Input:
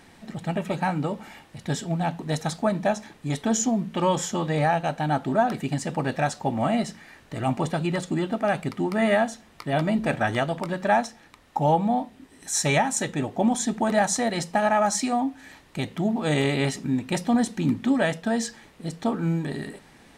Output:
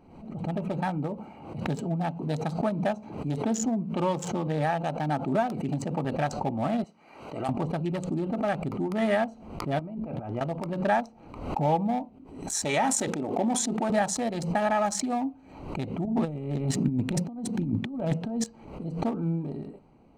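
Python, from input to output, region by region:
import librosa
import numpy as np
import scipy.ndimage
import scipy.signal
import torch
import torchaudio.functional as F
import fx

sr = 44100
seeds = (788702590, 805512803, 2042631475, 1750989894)

y = fx.chain(x, sr, fx.highpass(hz=90.0, slope=12),
    fx.band_squash(depth_pct=40), at=(1.18, 6.05))
y = fx.chain(y, sr, fx.highpass(hz=950.0, slope=6),
    fx.notch(hz=1700.0, q=15.0), at=(6.84, 7.49))
y = fx.chain(y, sr, fx.bessel_lowpass(hz=4300.0, order=2),
    fx.over_compress(threshold_db=-33.0, ratio=-1.0), at=(9.79, 10.41))
y = fx.chain(y, sr, fx.highpass(hz=220.0, slope=12),
    fx.notch(hz=1700.0, q=10.0),
    fx.sustainer(db_per_s=23.0), at=(12.64, 13.9))
y = fx.chain(y, sr, fx.highpass(hz=98.0, slope=24),
    fx.over_compress(threshold_db=-28.0, ratio=-0.5),
    fx.low_shelf(hz=180.0, db=11.0), at=(16.05, 18.44))
y = fx.wiener(y, sr, points=25)
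y = fx.pre_swell(y, sr, db_per_s=68.0)
y = y * 10.0 ** (-3.5 / 20.0)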